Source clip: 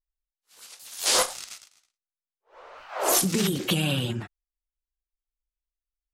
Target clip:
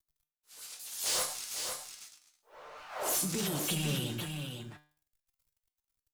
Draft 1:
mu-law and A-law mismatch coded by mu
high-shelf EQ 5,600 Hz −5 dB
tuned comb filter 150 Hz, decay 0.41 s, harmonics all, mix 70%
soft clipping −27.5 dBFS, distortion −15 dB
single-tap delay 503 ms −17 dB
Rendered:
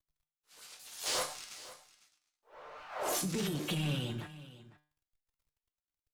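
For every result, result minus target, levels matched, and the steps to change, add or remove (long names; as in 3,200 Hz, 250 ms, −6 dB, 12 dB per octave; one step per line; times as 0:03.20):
echo-to-direct −11 dB; 8,000 Hz band −3.5 dB
change: single-tap delay 503 ms −6 dB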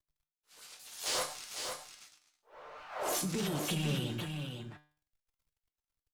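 8,000 Hz band −3.0 dB
change: high-shelf EQ 5,600 Hz +6.5 dB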